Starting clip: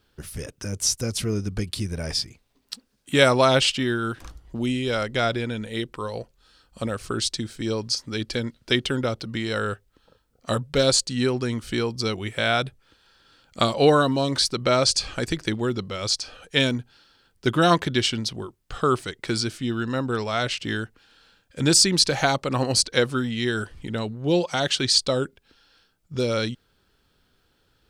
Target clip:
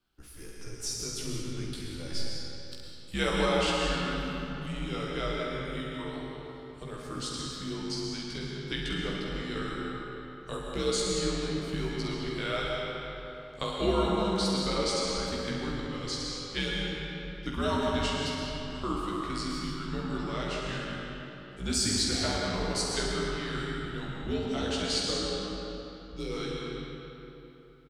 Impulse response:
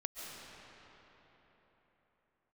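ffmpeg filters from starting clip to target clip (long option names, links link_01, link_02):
-filter_complex "[0:a]afreqshift=-84,aecho=1:1:16|47|67:0.631|0.422|0.473[link_01];[1:a]atrim=start_sample=2205,asetrate=57330,aresample=44100[link_02];[link_01][link_02]afir=irnorm=-1:irlink=0,volume=-8dB"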